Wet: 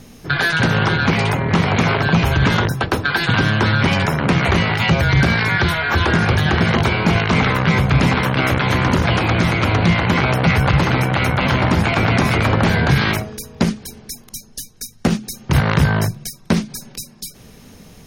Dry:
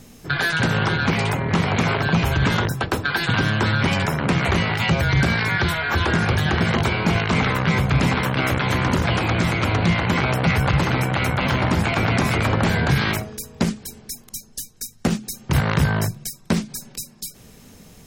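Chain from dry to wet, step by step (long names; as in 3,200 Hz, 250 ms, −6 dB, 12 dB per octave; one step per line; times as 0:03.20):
high-shelf EQ 11,000 Hz −6 dB
notch filter 7,600 Hz, Q 6.1
level +4 dB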